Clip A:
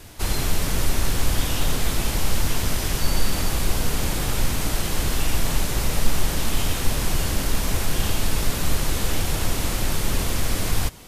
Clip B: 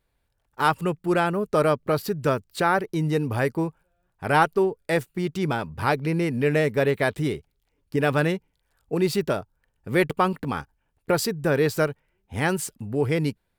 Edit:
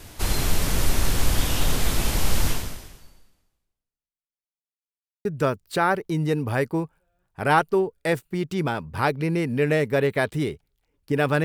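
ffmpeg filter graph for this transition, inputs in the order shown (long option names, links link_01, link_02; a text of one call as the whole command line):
ffmpeg -i cue0.wav -i cue1.wav -filter_complex "[0:a]apad=whole_dur=11.44,atrim=end=11.44,asplit=2[link_01][link_02];[link_01]atrim=end=4.46,asetpts=PTS-STARTPTS,afade=type=out:start_time=2.49:duration=1.97:curve=exp[link_03];[link_02]atrim=start=4.46:end=5.25,asetpts=PTS-STARTPTS,volume=0[link_04];[1:a]atrim=start=2.09:end=8.28,asetpts=PTS-STARTPTS,afade=type=in:duration=0.004:curve=hsin[link_05];[link_03][link_04][link_05]concat=n=3:v=0:a=1" out.wav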